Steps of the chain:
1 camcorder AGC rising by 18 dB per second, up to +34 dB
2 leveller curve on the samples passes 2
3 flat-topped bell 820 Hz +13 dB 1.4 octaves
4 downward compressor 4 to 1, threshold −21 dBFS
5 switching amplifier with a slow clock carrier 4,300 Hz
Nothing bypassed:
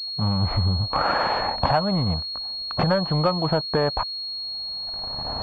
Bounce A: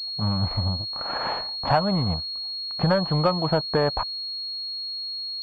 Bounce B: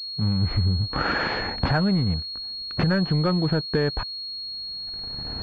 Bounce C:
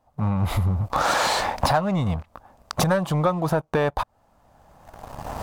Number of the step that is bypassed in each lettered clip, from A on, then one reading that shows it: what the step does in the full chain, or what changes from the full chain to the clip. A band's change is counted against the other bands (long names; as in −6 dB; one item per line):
1, 2 kHz band −2.5 dB
3, 1 kHz band −8.5 dB
5, 4 kHz band −8.5 dB